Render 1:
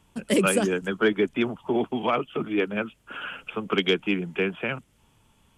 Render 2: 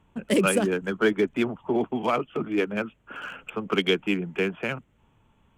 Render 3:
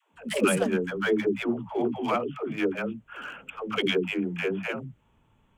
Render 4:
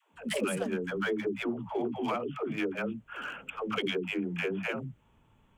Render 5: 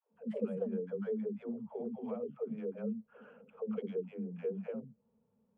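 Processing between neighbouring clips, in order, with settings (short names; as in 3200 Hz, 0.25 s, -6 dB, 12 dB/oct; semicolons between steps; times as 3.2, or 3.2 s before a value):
Wiener smoothing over 9 samples
dispersion lows, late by 0.145 s, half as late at 350 Hz; gain -2 dB
compressor 4:1, threshold -29 dBFS, peak gain reduction 10 dB
double band-pass 320 Hz, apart 1.1 oct; gain +1 dB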